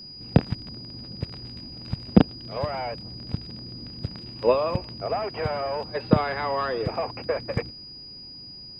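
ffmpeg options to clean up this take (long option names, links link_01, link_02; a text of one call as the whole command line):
ffmpeg -i in.wav -af "bandreject=frequency=4900:width=30" out.wav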